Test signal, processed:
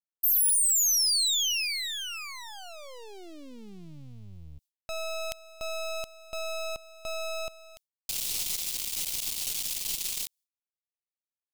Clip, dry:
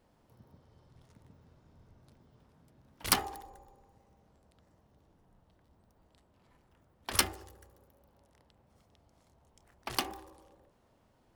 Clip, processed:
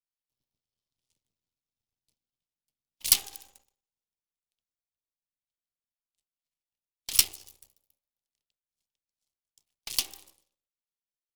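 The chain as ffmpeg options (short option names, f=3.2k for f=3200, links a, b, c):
-af "aeval=exprs='max(val(0),0)':c=same,aexciter=amount=5.6:drive=8.9:freq=2.4k,agate=range=-33dB:threshold=-44dB:ratio=3:detection=peak,volume=-8dB"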